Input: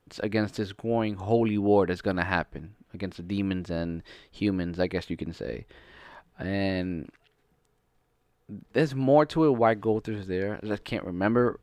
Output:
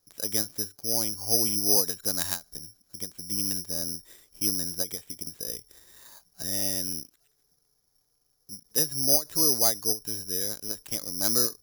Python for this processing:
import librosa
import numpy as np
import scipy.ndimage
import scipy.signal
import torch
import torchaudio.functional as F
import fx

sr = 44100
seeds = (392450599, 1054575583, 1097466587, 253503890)

y = (np.kron(scipy.signal.resample_poly(x, 1, 8), np.eye(8)[0]) * 8)[:len(x)]
y = fx.end_taper(y, sr, db_per_s=270.0)
y = y * 10.0 ** (-10.0 / 20.0)